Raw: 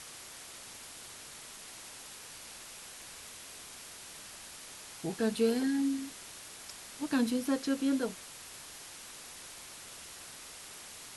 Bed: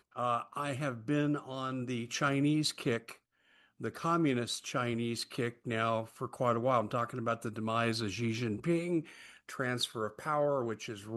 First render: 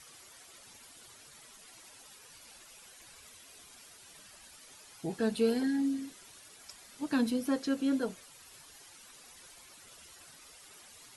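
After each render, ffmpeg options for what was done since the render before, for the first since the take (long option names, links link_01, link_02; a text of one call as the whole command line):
ffmpeg -i in.wav -af "afftdn=noise_reduction=11:noise_floor=-49" out.wav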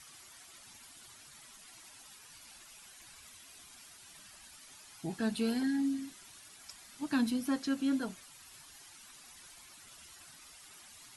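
ffmpeg -i in.wav -af "equalizer=frequency=480:width_type=o:width=0.57:gain=-10.5" out.wav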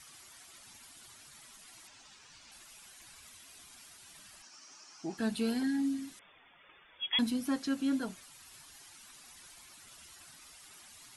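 ffmpeg -i in.wav -filter_complex "[0:a]asettb=1/sr,asplit=3[link_01][link_02][link_03];[link_01]atrim=end=1.874[link_04];[link_02]atrim=start=1.87:end=2.52,asetpts=PTS-STARTPTS,afade=type=in:duration=0.004:curve=qsin,afade=type=out:start_time=0.646:duration=0.004:curve=qsin,lowpass=frequency=7300:width=0.5412,lowpass=frequency=7300:width=1.3066[link_05];[link_03]atrim=start=2.516[link_06];[link_04][link_05]acrossfade=duration=0.004:curve1=hsin:curve2=qsin[link_07];[link_07][link_06]acrossfade=duration=0.004:curve1=qsin:curve2=hsin,asettb=1/sr,asplit=3[link_08][link_09][link_10];[link_08]atrim=end=4.424[link_11];[link_09]atrim=start=4.42:end=5.18,asetpts=PTS-STARTPTS,afade=type=in:duration=0.004:curve=qsin,afade=type=out:start_time=0.756:duration=0.004:curve=qsin,highpass=240,equalizer=frequency=330:width_type=q:width=4:gain=4,equalizer=frequency=470:width_type=q:width=4:gain=-3,equalizer=frequency=1200:width_type=q:width=4:gain=4,equalizer=frequency=2000:width_type=q:width=4:gain=-4,equalizer=frequency=3600:width_type=q:width=4:gain=-9,equalizer=frequency=5600:width_type=q:width=4:gain=9,lowpass=frequency=7000:width=0.5412,lowpass=frequency=7000:width=1.3066[link_12];[link_10]atrim=start=5.176[link_13];[link_11][link_12]acrossfade=duration=0.004:curve1=hsin:curve2=qsin[link_14];[link_14][link_13]acrossfade=duration=0.004:curve1=qsin:curve2=hsin,asettb=1/sr,asplit=3[link_15][link_16][link_17];[link_15]atrim=end=6.194[link_18];[link_16]atrim=start=6.19:end=7.19,asetpts=PTS-STARTPTS,afade=type=in:duration=0.004:curve=qsin,afade=type=out:start_time=0.996:duration=0.004:curve=qsin,lowpass=frequency=3100:width_type=q:width=0.5098,lowpass=frequency=3100:width_type=q:width=0.6013,lowpass=frequency=3100:width_type=q:width=0.9,lowpass=frequency=3100:width_type=q:width=2.563,afreqshift=-3600[link_19];[link_17]atrim=start=7.186[link_20];[link_18][link_19]acrossfade=duration=0.004:curve1=hsin:curve2=qsin[link_21];[link_21][link_20]acrossfade=duration=0.004:curve1=qsin:curve2=hsin" out.wav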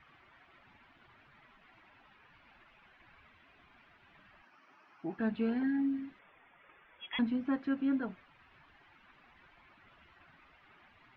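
ffmpeg -i in.wav -af "lowpass=frequency=2400:width=0.5412,lowpass=frequency=2400:width=1.3066" out.wav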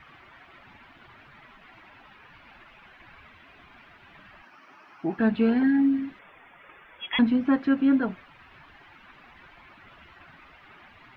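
ffmpeg -i in.wav -af "volume=10.5dB" out.wav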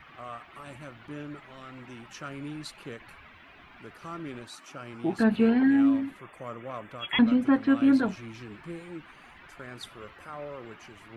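ffmpeg -i in.wav -i bed.wav -filter_complex "[1:a]volume=-9dB[link_01];[0:a][link_01]amix=inputs=2:normalize=0" out.wav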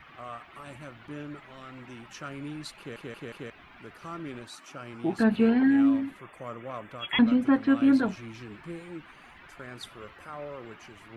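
ffmpeg -i in.wav -filter_complex "[0:a]asplit=5[link_01][link_02][link_03][link_04][link_05];[link_01]atrim=end=2.962[link_06];[link_02]atrim=start=2.778:end=2.962[link_07];[link_03]atrim=start=2.778:end=2.962[link_08];[link_04]atrim=start=2.778:end=2.962[link_09];[link_05]atrim=start=3.498[link_10];[link_06][link_07]acrossfade=duration=0.004:curve1=hsin:curve2=hsin[link_11];[link_11][link_08]acrossfade=duration=0.004:curve1=hsin:curve2=hsin[link_12];[link_12][link_09]acrossfade=duration=0.004:curve1=hsin:curve2=hsin[link_13];[link_13][link_10]acrossfade=duration=0.004:curve1=hsin:curve2=hsin" out.wav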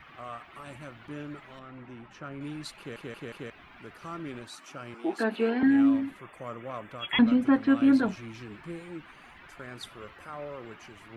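ffmpeg -i in.wav -filter_complex "[0:a]asettb=1/sr,asplit=3[link_01][link_02][link_03];[link_01]atrim=end=1.594[link_04];[link_02]atrim=start=1.59:end=2.41,asetpts=PTS-STARTPTS,afade=type=in:duration=0.004:curve=qsin,afade=type=out:start_time=0.816:duration=0.004:curve=qsin,lowpass=frequency=1400:poles=1[link_05];[link_03]atrim=start=2.406[link_06];[link_04][link_05]acrossfade=duration=0.004:curve1=hsin:curve2=qsin[link_07];[link_07][link_06]acrossfade=duration=0.004:curve1=qsin:curve2=hsin,asettb=1/sr,asplit=3[link_08][link_09][link_10];[link_08]atrim=end=4.944[link_11];[link_09]atrim=start=4.94:end=5.63,asetpts=PTS-STARTPTS,afade=type=in:duration=0.004:curve=qsin,afade=type=out:start_time=0.686:duration=0.004:curve=qsin,highpass=frequency=290:width=0.5412,highpass=frequency=290:width=1.3066[link_12];[link_10]atrim=start=5.626[link_13];[link_11][link_12]acrossfade=duration=0.004:curve1=hsin:curve2=qsin[link_14];[link_14][link_13]acrossfade=duration=0.004:curve1=qsin:curve2=hsin" out.wav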